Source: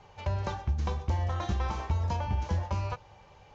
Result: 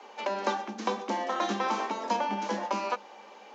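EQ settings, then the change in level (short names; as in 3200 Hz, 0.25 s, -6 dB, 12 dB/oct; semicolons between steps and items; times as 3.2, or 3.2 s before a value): Chebyshev high-pass 200 Hz, order 10; +8.0 dB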